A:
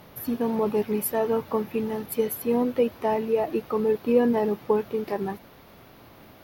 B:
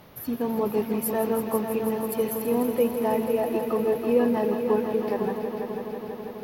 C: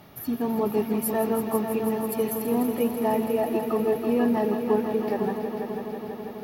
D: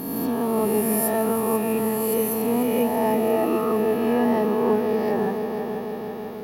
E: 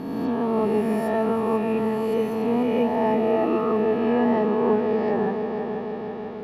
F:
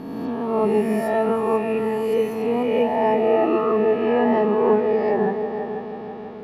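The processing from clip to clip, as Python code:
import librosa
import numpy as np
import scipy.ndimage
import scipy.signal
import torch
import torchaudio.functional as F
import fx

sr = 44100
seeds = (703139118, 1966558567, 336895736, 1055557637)

y1 = fx.echo_heads(x, sr, ms=164, heads='all three', feedback_pct=73, wet_db=-12.0)
y1 = y1 * 10.0 ** (-1.5 / 20.0)
y2 = fx.notch_comb(y1, sr, f0_hz=510.0)
y2 = y2 * 10.0 ** (1.5 / 20.0)
y3 = fx.spec_swells(y2, sr, rise_s=1.83)
y4 = scipy.signal.sosfilt(scipy.signal.butter(2, 3400.0, 'lowpass', fs=sr, output='sos'), y3)
y5 = fx.noise_reduce_blind(y4, sr, reduce_db=6)
y5 = y5 * 10.0 ** (4.0 / 20.0)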